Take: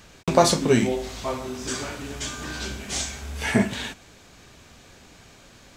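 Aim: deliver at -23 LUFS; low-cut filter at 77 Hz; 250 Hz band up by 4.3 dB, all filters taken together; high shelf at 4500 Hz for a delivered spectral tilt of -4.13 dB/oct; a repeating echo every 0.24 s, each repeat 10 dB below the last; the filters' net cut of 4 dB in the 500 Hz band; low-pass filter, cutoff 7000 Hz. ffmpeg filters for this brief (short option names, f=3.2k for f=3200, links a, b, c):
-af "highpass=77,lowpass=7k,equalizer=f=250:t=o:g=7,equalizer=f=500:t=o:g=-8,highshelf=f=4.5k:g=5.5,aecho=1:1:240|480|720|960:0.316|0.101|0.0324|0.0104,volume=0.5dB"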